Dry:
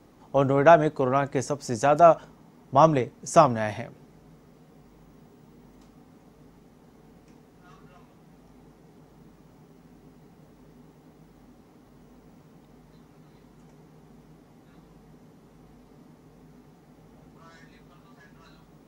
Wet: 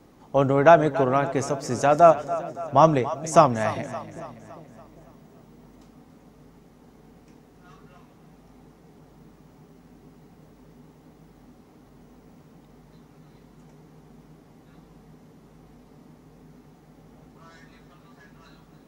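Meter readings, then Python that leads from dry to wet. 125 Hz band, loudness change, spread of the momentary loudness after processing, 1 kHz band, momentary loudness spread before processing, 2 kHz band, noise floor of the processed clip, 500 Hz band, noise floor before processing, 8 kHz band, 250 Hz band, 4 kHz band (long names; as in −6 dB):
+1.5 dB, +1.0 dB, 16 LU, +1.5 dB, 12 LU, +1.5 dB, −54 dBFS, +1.5 dB, −56 dBFS, +1.5 dB, +2.0 dB, +1.5 dB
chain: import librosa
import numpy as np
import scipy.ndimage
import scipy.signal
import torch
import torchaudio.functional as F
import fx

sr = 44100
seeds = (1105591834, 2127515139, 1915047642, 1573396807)

y = fx.echo_split(x, sr, split_hz=490.0, low_ms=400, high_ms=282, feedback_pct=52, wet_db=-14.0)
y = F.gain(torch.from_numpy(y), 1.5).numpy()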